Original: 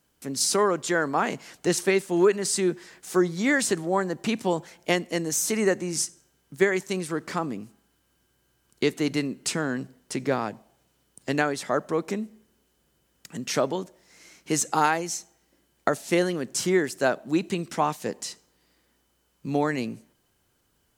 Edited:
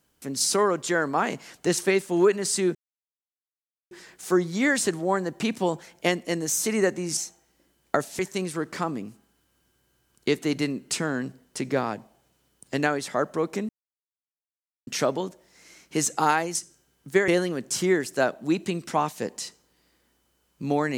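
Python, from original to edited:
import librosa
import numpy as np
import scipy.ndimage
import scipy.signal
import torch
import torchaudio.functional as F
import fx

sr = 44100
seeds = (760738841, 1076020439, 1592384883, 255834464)

y = fx.edit(x, sr, fx.insert_silence(at_s=2.75, length_s=1.16),
    fx.swap(start_s=6.01, length_s=0.73, other_s=15.1, other_length_s=1.02),
    fx.silence(start_s=12.24, length_s=1.18), tone=tone)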